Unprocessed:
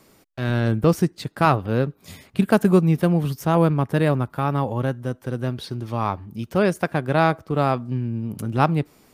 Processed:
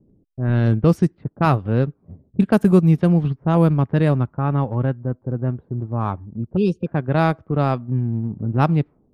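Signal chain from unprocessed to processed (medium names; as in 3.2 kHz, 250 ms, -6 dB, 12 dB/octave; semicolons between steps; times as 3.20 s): level-controlled noise filter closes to 460 Hz, open at -14 dBFS; spectral selection erased 6.57–6.87 s, 520–2400 Hz; level-controlled noise filter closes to 400 Hz, open at -13 dBFS; bass shelf 280 Hz +8.5 dB; transient shaper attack -1 dB, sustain -6 dB; trim -2 dB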